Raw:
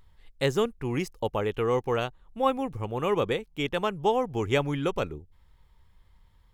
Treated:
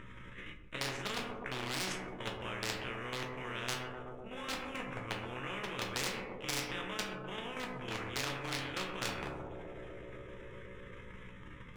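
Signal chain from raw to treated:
variable-slope delta modulation 64 kbit/s
low-pass filter 2,900 Hz 12 dB per octave
reversed playback
downward compressor 10 to 1, threshold −33 dBFS, peak gain reduction 15 dB
reversed playback
phaser with its sweep stopped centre 1,900 Hz, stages 4
time stretch by overlap-add 1.8×, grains 71 ms
output level in coarse steps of 10 dB
wave folding −34.5 dBFS
feedback echo with a band-pass in the loop 126 ms, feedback 81%, band-pass 470 Hz, level −12 dB
on a send at −1.5 dB: convolution reverb RT60 0.45 s, pre-delay 8 ms
on the sum: every bin compressed towards the loudest bin 4 to 1
level +8 dB

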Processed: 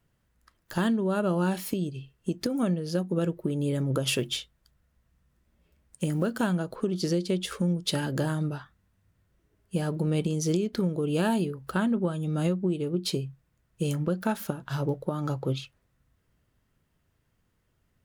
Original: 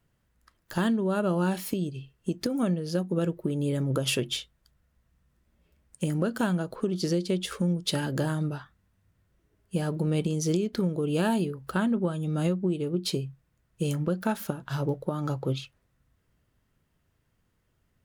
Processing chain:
0:04.10–0:06.34: one scale factor per block 7 bits

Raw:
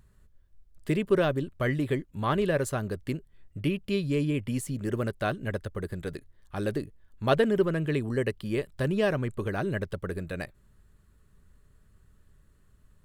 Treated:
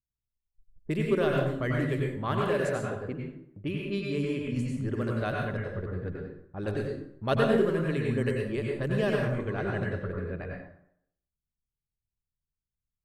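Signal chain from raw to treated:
0:02.32–0:04.42: low-shelf EQ 120 Hz −9 dB
low-pass that shuts in the quiet parts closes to 310 Hz, open at −23 dBFS
noise gate −48 dBFS, range −32 dB
dense smooth reverb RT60 0.69 s, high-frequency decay 0.7×, pre-delay 80 ms, DRR −1.5 dB
level −4 dB

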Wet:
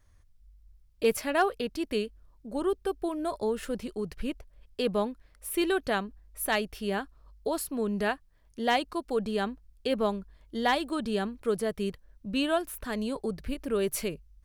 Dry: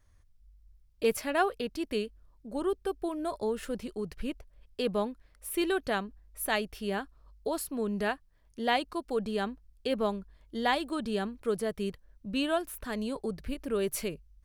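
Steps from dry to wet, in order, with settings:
hard clipping −17 dBFS, distortion −30 dB
level +2 dB

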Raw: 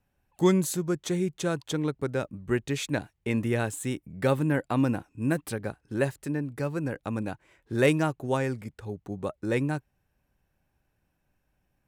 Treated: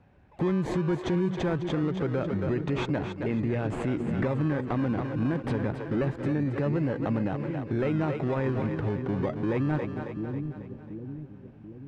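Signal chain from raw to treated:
mu-law and A-law mismatch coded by mu
high-pass filter 62 Hz
in parallel at −4 dB: sample-and-hold swept by an LFO 26×, swing 60% 0.25 Hz
on the sum: downward compressor 5 to 1, threshold −23 dBFS, peak gain reduction 10 dB
hard clipping −17 dBFS, distortion −32 dB
low-pass filter 2,100 Hz 12 dB per octave
on a send: echo with a time of its own for lows and highs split 360 Hz, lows 735 ms, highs 272 ms, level −9.5 dB
on the sum: brickwall limiter −24 dBFS, peak gain reduction 8.5 dB
level +4.5 dB

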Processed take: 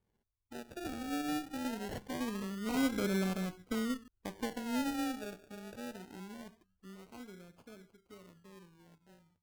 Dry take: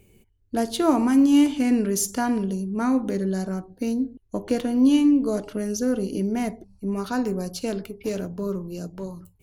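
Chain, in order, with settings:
source passing by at 0:03.25, 13 m/s, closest 6.1 metres
sample-and-hold swept by an LFO 33×, swing 60% 0.23 Hz
harmonic generator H 6 −21 dB, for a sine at −15.5 dBFS
level −7 dB

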